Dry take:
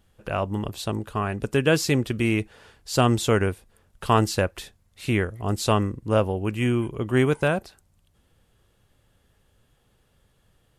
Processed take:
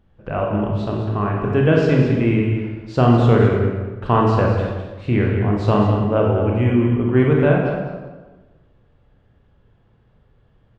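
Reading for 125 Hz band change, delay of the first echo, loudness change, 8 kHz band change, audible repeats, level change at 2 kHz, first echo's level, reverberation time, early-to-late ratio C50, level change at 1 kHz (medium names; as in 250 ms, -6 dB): +9.0 dB, 205 ms, +6.0 dB, under -15 dB, 1, +1.5 dB, -8.5 dB, 1.3 s, 0.5 dB, +5.0 dB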